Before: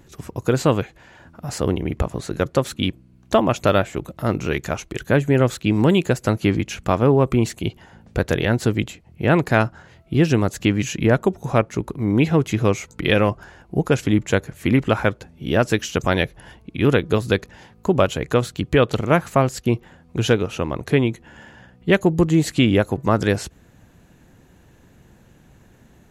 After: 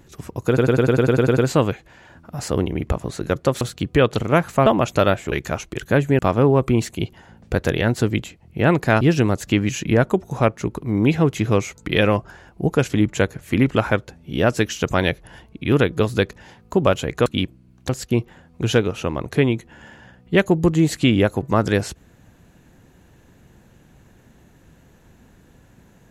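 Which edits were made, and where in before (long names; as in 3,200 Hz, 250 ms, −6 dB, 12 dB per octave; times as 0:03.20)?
0:00.47: stutter 0.10 s, 10 plays
0:02.71–0:03.34: swap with 0:18.39–0:19.44
0:04.00–0:04.51: remove
0:05.38–0:06.83: remove
0:09.65–0:10.14: remove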